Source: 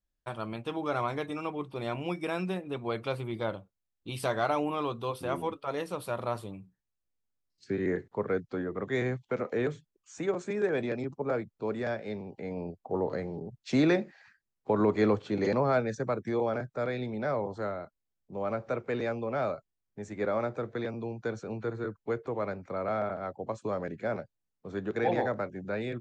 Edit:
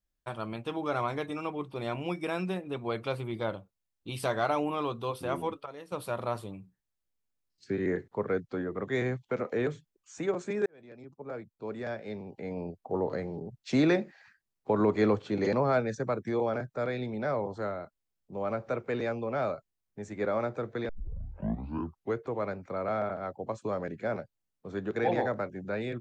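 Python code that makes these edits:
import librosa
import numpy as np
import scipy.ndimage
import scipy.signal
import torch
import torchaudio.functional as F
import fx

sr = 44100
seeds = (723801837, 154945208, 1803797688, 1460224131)

y = fx.edit(x, sr, fx.clip_gain(start_s=5.66, length_s=0.26, db=-11.5),
    fx.fade_in_span(start_s=10.66, length_s=1.83),
    fx.tape_start(start_s=20.89, length_s=1.28), tone=tone)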